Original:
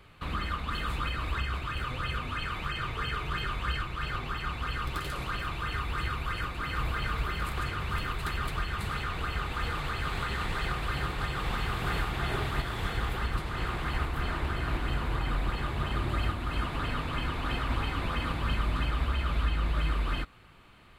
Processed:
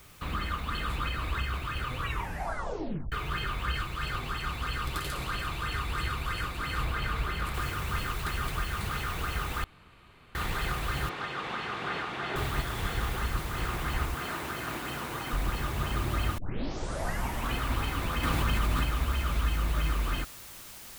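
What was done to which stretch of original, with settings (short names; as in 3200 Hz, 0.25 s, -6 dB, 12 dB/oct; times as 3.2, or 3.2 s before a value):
1.97 tape stop 1.15 s
3.76–6.85 tone controls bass 0 dB, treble +6 dB
7.54 noise floor step -57 dB -47 dB
9.64–10.35 room tone
11.09–12.36 BPF 230–4100 Hz
14.16–15.33 Bessel high-pass 200 Hz
16.38 tape start 1.18 s
18.23–18.84 fast leveller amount 70%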